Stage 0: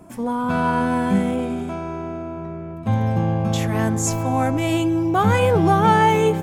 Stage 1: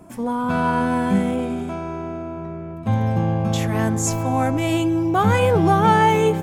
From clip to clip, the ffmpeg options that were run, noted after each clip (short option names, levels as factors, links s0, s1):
-af anull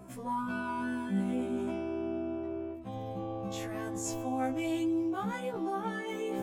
-af "areverse,acompressor=threshold=0.0562:ratio=20,areverse,afftfilt=real='re*1.73*eq(mod(b,3),0)':imag='im*1.73*eq(mod(b,3),0)':win_size=2048:overlap=0.75,volume=0.708"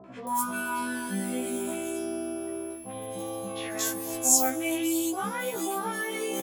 -filter_complex "[0:a]aemphasis=mode=production:type=riaa,aeval=exprs='val(0)+0.00251*sin(2*PI*11000*n/s)':c=same,acrossover=split=990|3300[s0][s1][s2];[s1]adelay=40[s3];[s2]adelay=270[s4];[s0][s3][s4]amix=inputs=3:normalize=0,volume=2.24"